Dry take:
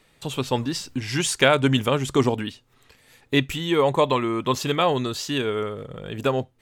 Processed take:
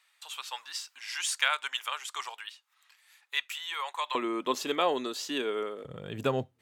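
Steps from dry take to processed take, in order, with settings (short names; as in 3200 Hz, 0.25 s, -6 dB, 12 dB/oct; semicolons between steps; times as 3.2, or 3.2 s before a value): HPF 1000 Hz 24 dB/oct, from 4.15 s 260 Hz, from 5.85 s 78 Hz; gain -6 dB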